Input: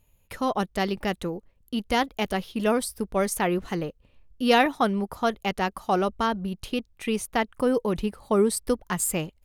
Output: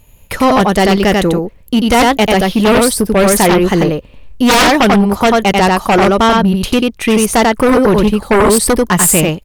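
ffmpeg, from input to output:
-af "aecho=1:1:91:0.668,aeval=exprs='0.531*(cos(1*acos(clip(val(0)/0.531,-1,1)))-cos(1*PI/2))+0.211*(cos(3*acos(clip(val(0)/0.531,-1,1)))-cos(3*PI/2))+0.0473*(cos(6*acos(clip(val(0)/0.531,-1,1)))-cos(6*PI/2))+0.106*(cos(7*acos(clip(val(0)/0.531,-1,1)))-cos(7*PI/2))+0.0168*(cos(8*acos(clip(val(0)/0.531,-1,1)))-cos(8*PI/2))':c=same,apsyclip=8.91,volume=0.562"

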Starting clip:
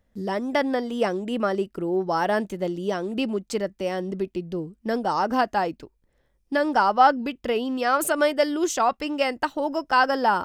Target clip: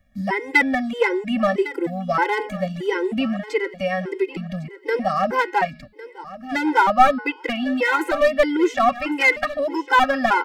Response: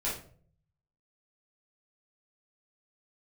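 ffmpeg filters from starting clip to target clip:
-filter_complex "[0:a]equalizer=f=2100:w=3:g=14,bandreject=f=211.4:t=h:w=4,bandreject=f=422.8:t=h:w=4,bandreject=f=634.2:t=h:w=4,bandreject=f=845.6:t=h:w=4,bandreject=f=1057:t=h:w=4,bandreject=f=1268.4:t=h:w=4,bandreject=f=1479.8:t=h:w=4,bandreject=f=1691.2:t=h:w=4,bandreject=f=1902.6:t=h:w=4,bandreject=f=2114:t=h:w=4,bandreject=f=2325.4:t=h:w=4,bandreject=f=2536.8:t=h:w=4,bandreject=f=2748.2:t=h:w=4,bandreject=f=2959.6:t=h:w=4,bandreject=f=3171:t=h:w=4,bandreject=f=3382.4:t=h:w=4,bandreject=f=3593.8:t=h:w=4,bandreject=f=3805.2:t=h:w=4,bandreject=f=4016.6:t=h:w=4,bandreject=f=4228:t=h:w=4,bandreject=f=4439.4:t=h:w=4,bandreject=f=4650.8:t=h:w=4,bandreject=f=4862.2:t=h:w=4,bandreject=f=5073.6:t=h:w=4,bandreject=f=5285:t=h:w=4,bandreject=f=5496.4:t=h:w=4,acrossover=split=430|3500[s0][s1][s2];[s2]acompressor=threshold=0.00316:ratio=6[s3];[s0][s1][s3]amix=inputs=3:normalize=0,aeval=exprs='clip(val(0),-1,0.133)':c=same,asplit=2[s4][s5];[s5]aecho=0:1:1104|2208|3312:0.158|0.0428|0.0116[s6];[s4][s6]amix=inputs=2:normalize=0,afftfilt=real='re*gt(sin(2*PI*1.6*pts/sr)*(1-2*mod(floor(b*sr/1024/270),2)),0)':imag='im*gt(sin(2*PI*1.6*pts/sr)*(1-2*mod(floor(b*sr/1024/270),2)),0)':win_size=1024:overlap=0.75,volume=2"

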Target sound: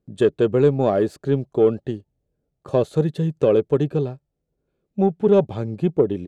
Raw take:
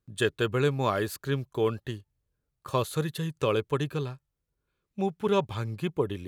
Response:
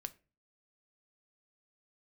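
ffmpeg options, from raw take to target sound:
-filter_complex "[0:a]firequalizer=gain_entry='entry(110,0);entry(170,8);entry(720,8);entry(1000,-6);entry(8100,-9);entry(13000,-23)':delay=0.05:min_phase=1,asplit=2[s0][s1];[s1]asoftclip=type=tanh:threshold=0.168,volume=0.447[s2];[s0][s2]amix=inputs=2:normalize=0"

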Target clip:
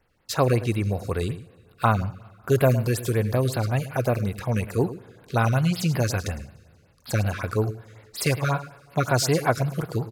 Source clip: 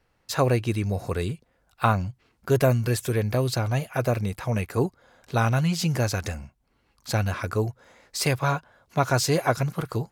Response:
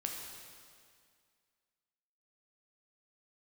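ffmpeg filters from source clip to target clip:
-filter_complex "[0:a]aecho=1:1:107:0.188,asplit=2[s0][s1];[1:a]atrim=start_sample=2205[s2];[s1][s2]afir=irnorm=-1:irlink=0,volume=0.141[s3];[s0][s3]amix=inputs=2:normalize=0,afftfilt=real='re*(1-between(b*sr/1024,740*pow(7600/740,0.5+0.5*sin(2*PI*5.4*pts/sr))/1.41,740*pow(7600/740,0.5+0.5*sin(2*PI*5.4*pts/sr))*1.41))':imag='im*(1-between(b*sr/1024,740*pow(7600/740,0.5+0.5*sin(2*PI*5.4*pts/sr))/1.41,740*pow(7600/740,0.5+0.5*sin(2*PI*5.4*pts/sr))*1.41))':win_size=1024:overlap=0.75"

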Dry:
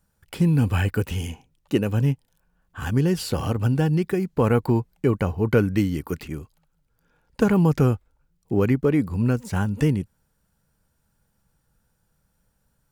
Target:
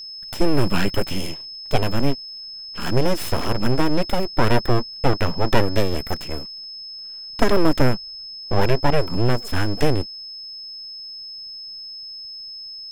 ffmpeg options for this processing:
-af "aeval=exprs='abs(val(0))':c=same,aeval=exprs='val(0)+0.0126*sin(2*PI*5200*n/s)':c=same,volume=1.78"

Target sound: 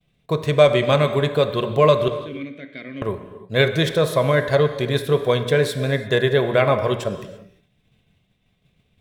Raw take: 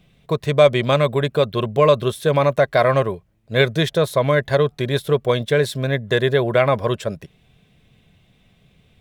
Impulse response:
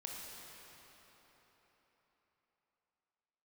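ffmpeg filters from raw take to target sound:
-filter_complex "[0:a]asettb=1/sr,asplit=3[s0][s1][s2];[s0]atrim=end=2.084[s3];[s1]atrim=start=2.08:end=3.02,asetpts=PTS-STARTPTS,afade=t=in:d=0.004:c=qsin,afade=t=out:st=0.936:d=0.004:c=qsin,asplit=3[s4][s5][s6];[s4]bandpass=f=270:t=q:w=8,volume=1[s7];[s5]bandpass=f=2290:t=q:w=8,volume=0.501[s8];[s6]bandpass=f=3010:t=q:w=8,volume=0.355[s9];[s7][s8][s9]amix=inputs=3:normalize=0[s10];[s2]atrim=start=3.016[s11];[s3][s10]acrossfade=d=0.004:c1=hsin:c2=qsin[s12];[s12][s11]acrossfade=d=0.004:c1=qsin:c2=hsin,agate=range=0.0224:threshold=0.00398:ratio=3:detection=peak,bandreject=f=58.01:t=h:w=4,bandreject=f=116.02:t=h:w=4,bandreject=f=174.03:t=h:w=4,bandreject=f=232.04:t=h:w=4,bandreject=f=290.05:t=h:w=4,bandreject=f=348.06:t=h:w=4,bandreject=f=406.07:t=h:w=4,bandreject=f=464.08:t=h:w=4,bandreject=f=522.09:t=h:w=4,bandreject=f=580.1:t=h:w=4,bandreject=f=638.11:t=h:w=4,bandreject=f=696.12:t=h:w=4,bandreject=f=754.13:t=h:w=4,bandreject=f=812.14:t=h:w=4,bandreject=f=870.15:t=h:w=4,bandreject=f=928.16:t=h:w=4,bandreject=f=986.17:t=h:w=4,bandreject=f=1044.18:t=h:w=4,bandreject=f=1102.19:t=h:w=4,bandreject=f=1160.2:t=h:w=4,bandreject=f=1218.21:t=h:w=4,bandreject=f=1276.22:t=h:w=4,bandreject=f=1334.23:t=h:w=4,bandreject=f=1392.24:t=h:w=4,bandreject=f=1450.25:t=h:w=4,bandreject=f=1508.26:t=h:w=4,bandreject=f=1566.27:t=h:w=4,bandreject=f=1624.28:t=h:w=4,bandreject=f=1682.29:t=h:w=4,bandreject=f=1740.3:t=h:w=4,bandreject=f=1798.31:t=h:w=4,bandreject=f=1856.32:t=h:w=4,bandreject=f=1914.33:t=h:w=4,bandreject=f=1972.34:t=h:w=4,bandreject=f=2030.35:t=h:w=4,bandreject=f=2088.36:t=h:w=4,bandreject=f=2146.37:t=h:w=4,bandreject=f=2204.38:t=h:w=4,asplit=2[s13][s14];[1:a]atrim=start_sample=2205,afade=t=out:st=0.4:d=0.01,atrim=end_sample=18081[s15];[s14][s15]afir=irnorm=-1:irlink=0,volume=0.75[s16];[s13][s16]amix=inputs=2:normalize=0,volume=0.708"

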